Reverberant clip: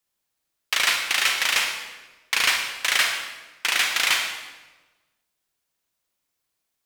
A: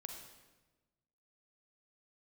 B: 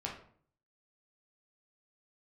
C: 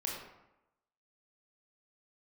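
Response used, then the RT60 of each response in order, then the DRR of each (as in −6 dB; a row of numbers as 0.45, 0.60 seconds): A; 1.2, 0.55, 0.90 seconds; 3.0, −2.5, −3.0 decibels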